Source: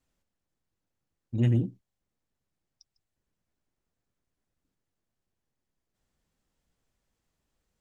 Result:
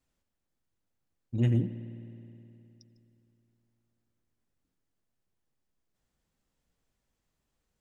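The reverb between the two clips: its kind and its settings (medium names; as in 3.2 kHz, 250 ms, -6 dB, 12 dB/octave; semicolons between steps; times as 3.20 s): spring tank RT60 3.1 s, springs 52 ms, chirp 65 ms, DRR 11 dB; trim -1.5 dB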